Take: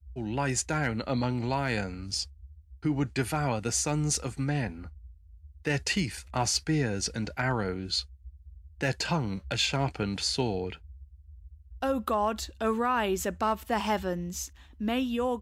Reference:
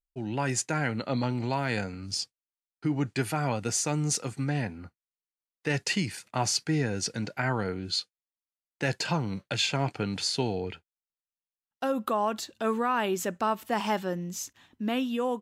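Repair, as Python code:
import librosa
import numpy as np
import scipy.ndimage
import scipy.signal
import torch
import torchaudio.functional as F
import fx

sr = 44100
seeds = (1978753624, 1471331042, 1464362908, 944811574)

y = fx.fix_declip(x, sr, threshold_db=-17.5)
y = fx.noise_reduce(y, sr, print_start_s=5.15, print_end_s=5.65, reduce_db=30.0)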